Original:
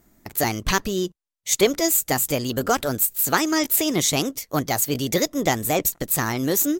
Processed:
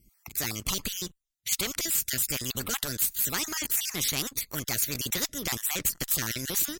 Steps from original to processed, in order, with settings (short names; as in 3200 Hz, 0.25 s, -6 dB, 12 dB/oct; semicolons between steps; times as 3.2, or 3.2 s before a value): random spectral dropouts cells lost 32%; AGC; sample leveller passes 1; passive tone stack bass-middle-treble 6-0-2; spectral compressor 2:1; gain +4 dB